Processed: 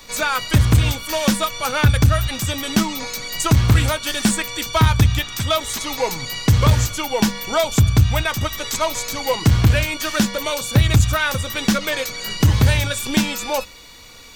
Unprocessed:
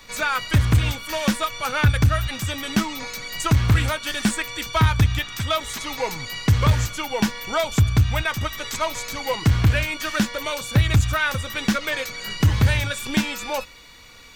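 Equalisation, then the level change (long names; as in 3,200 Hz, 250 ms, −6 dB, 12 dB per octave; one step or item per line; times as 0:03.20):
low-shelf EQ 420 Hz −3.5 dB
parametric band 1,800 Hz −6.5 dB 1.9 octaves
mains-hum notches 50/100/150/200 Hz
+7.5 dB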